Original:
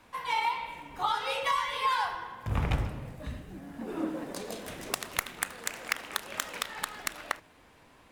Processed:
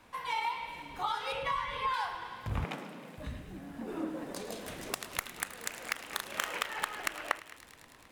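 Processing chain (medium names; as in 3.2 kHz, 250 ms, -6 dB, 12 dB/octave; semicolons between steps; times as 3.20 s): 1.32–1.94 s: tone controls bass +12 dB, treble -11 dB; 6.07–6.58 s: doubling 39 ms -4.5 dB; on a send: feedback echo behind a high-pass 106 ms, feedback 82%, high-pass 1.9 kHz, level -16 dB; 6.39–7.56 s: on the sum: time-frequency box 290–3300 Hz +6 dB; in parallel at -1 dB: compression, threshold -37 dBFS, peak gain reduction 17.5 dB; 2.64–3.18 s: on the sum: brick-wall FIR high-pass 160 Hz; trim -6.5 dB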